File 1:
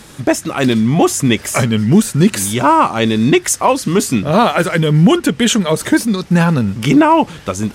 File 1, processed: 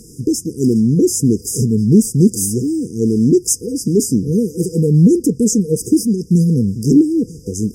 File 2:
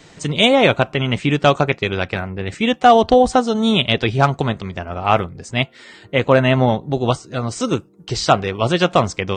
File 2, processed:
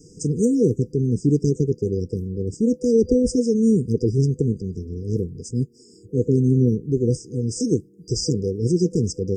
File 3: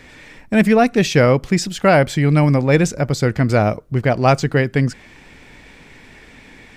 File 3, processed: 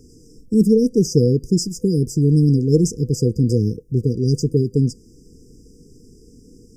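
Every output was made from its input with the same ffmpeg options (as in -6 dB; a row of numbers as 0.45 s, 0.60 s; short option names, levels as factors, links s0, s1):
-af "afftfilt=real='re*(1-between(b*sr/4096,500,4800))':imag='im*(1-between(b*sr/4096,500,4800))':win_size=4096:overlap=0.75"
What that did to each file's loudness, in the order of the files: -1.5 LU, -4.5 LU, -2.0 LU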